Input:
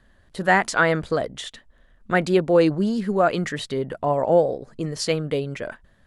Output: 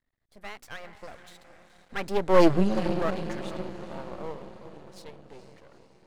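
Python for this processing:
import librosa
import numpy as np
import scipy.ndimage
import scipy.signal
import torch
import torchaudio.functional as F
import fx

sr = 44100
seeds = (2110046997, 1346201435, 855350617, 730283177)

y = fx.doppler_pass(x, sr, speed_mps=28, closest_m=3.1, pass_at_s=2.51)
y = fx.echo_diffused(y, sr, ms=452, feedback_pct=55, wet_db=-12.0)
y = np.maximum(y, 0.0)
y = F.gain(torch.from_numpy(y), 7.0).numpy()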